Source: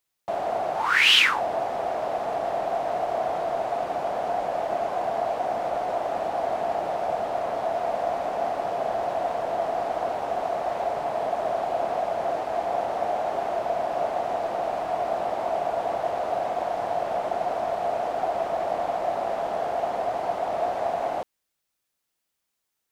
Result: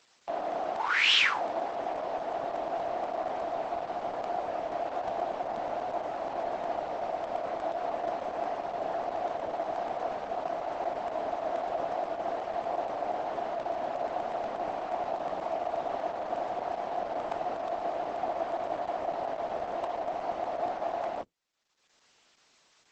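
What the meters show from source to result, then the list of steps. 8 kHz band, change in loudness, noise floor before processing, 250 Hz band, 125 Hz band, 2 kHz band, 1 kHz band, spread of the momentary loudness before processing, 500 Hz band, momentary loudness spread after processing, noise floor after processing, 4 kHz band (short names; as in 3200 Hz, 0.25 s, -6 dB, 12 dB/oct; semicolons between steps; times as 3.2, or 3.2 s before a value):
n/a, -6.0 dB, -80 dBFS, -3.5 dB, -7.5 dB, -6.0 dB, -6.0 dB, 1 LU, -6.5 dB, 2 LU, -66 dBFS, -6.0 dB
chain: octaver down 1 oct, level +3 dB; upward compressor, threshold -32 dBFS; hard clip -10.5 dBFS, distortion -33 dB; BPF 320–5600 Hz; crackling interface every 0.12 s, samples 64, zero, from 0.52; gain -5 dB; Opus 10 kbps 48000 Hz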